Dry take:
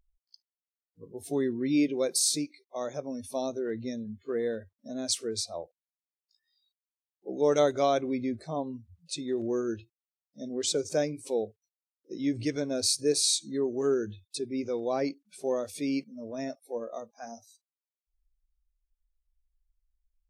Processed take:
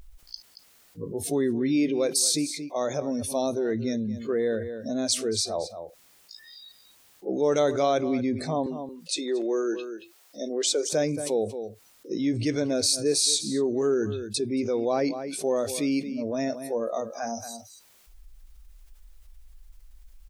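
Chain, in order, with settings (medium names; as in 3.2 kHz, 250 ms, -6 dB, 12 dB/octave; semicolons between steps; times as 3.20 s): 8.66–10.93 s: high-pass 330 Hz 24 dB/octave; echo from a far wall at 39 m, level -18 dB; level flattener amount 50%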